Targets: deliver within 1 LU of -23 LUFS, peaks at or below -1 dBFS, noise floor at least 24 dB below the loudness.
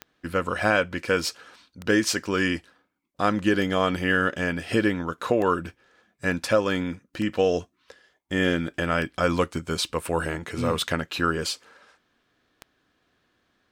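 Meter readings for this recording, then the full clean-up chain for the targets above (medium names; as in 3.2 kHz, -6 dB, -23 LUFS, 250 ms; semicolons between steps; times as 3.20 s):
clicks found 8; loudness -25.5 LUFS; peak level -6.5 dBFS; loudness target -23.0 LUFS
-> de-click; trim +2.5 dB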